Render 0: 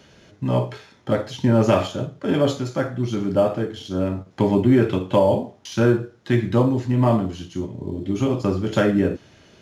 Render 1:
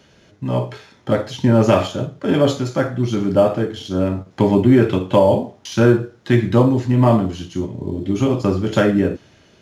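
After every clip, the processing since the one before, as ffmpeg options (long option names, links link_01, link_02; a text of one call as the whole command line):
ffmpeg -i in.wav -af "dynaudnorm=framelen=220:gausssize=7:maxgain=11.5dB,volume=-1dB" out.wav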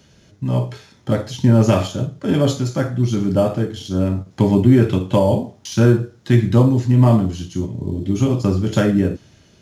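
ffmpeg -i in.wav -af "bass=frequency=250:gain=8,treble=frequency=4000:gain=8,volume=-4dB" out.wav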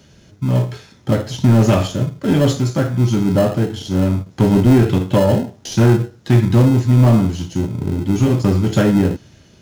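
ffmpeg -i in.wav -filter_complex "[0:a]asplit=2[link_01][link_02];[link_02]acrusher=samples=38:mix=1:aa=0.000001,volume=-11dB[link_03];[link_01][link_03]amix=inputs=2:normalize=0,asoftclip=type=tanh:threshold=-6.5dB,volume=2dB" out.wav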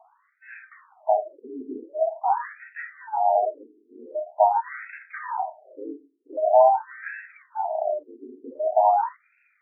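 ffmpeg -i in.wav -af "afftfilt=real='real(if(lt(b,1008),b+24*(1-2*mod(floor(b/24),2)),b),0)':imag='imag(if(lt(b,1008),b+24*(1-2*mod(floor(b/24),2)),b),0)':win_size=2048:overlap=0.75,aresample=8000,aresample=44100,afftfilt=real='re*between(b*sr/1024,310*pow(1900/310,0.5+0.5*sin(2*PI*0.45*pts/sr))/1.41,310*pow(1900/310,0.5+0.5*sin(2*PI*0.45*pts/sr))*1.41)':imag='im*between(b*sr/1024,310*pow(1900/310,0.5+0.5*sin(2*PI*0.45*pts/sr))/1.41,310*pow(1900/310,0.5+0.5*sin(2*PI*0.45*pts/sr))*1.41)':win_size=1024:overlap=0.75,volume=-3.5dB" out.wav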